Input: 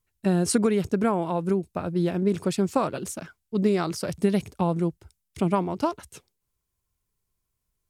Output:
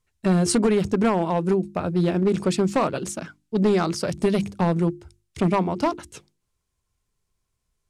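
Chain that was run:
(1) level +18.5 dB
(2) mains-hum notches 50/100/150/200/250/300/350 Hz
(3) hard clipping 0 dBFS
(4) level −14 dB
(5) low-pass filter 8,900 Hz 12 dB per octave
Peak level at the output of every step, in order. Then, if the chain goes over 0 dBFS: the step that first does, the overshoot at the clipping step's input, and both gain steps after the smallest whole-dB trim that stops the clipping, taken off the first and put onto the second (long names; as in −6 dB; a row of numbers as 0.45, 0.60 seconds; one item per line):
+9.5, +9.0, 0.0, −14.0, −13.5 dBFS
step 1, 9.0 dB
step 1 +9.5 dB, step 4 −5 dB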